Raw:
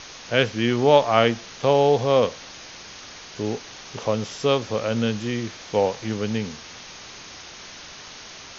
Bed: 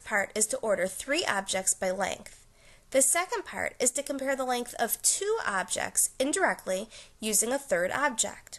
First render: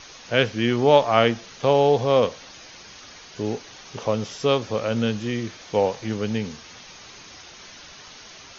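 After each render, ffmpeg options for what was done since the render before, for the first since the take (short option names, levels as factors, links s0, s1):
-af "afftdn=nr=6:nf=-42"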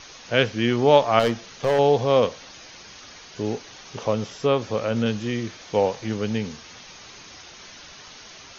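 -filter_complex "[0:a]asettb=1/sr,asplit=3[s0][s1][s2];[s0]atrim=end=1.194[s3];[s1]atrim=start=1.19:end=1.79,asetpts=PTS-STARTPTS,afade=t=in:d=0.004:c=qsin,afade=t=out:st=0.596:d=0.004:c=qsin,volume=5.62,asoftclip=hard,volume=0.178[s4];[s2]atrim=start=1.786[s5];[s3][s4]acrossfade=d=0.004:c1=hsin:c2=qsin[s6];[s6][s5]acrossfade=d=0.004:c1=qsin:c2=hsin,asettb=1/sr,asplit=3[s7][s8][s9];[s7]atrim=end=4.134[s10];[s8]atrim=start=4.13:end=5.06,asetpts=PTS-STARTPTS,afade=t=in:d=0.004:c=qsin,afade=t=out:st=0.926:d=0.004:c=qsin,acrossover=split=2700[s11][s12];[s12]acompressor=threshold=0.0112:ratio=4:attack=1:release=60[s13];[s11][s13]amix=inputs=2:normalize=0[s14];[s9]atrim=start=5.056[s15];[s10][s14]acrossfade=d=0.004:c1=hsin:c2=qsin[s16];[s16][s15]acrossfade=d=0.004:c1=qsin:c2=hsin"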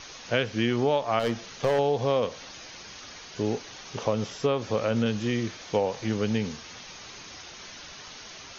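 -af "acompressor=threshold=0.1:ratio=10"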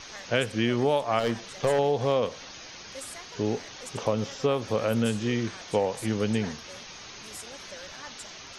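-filter_complex "[1:a]volume=0.119[s0];[0:a][s0]amix=inputs=2:normalize=0"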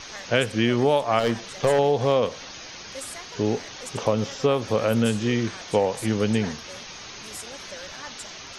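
-af "volume=1.58"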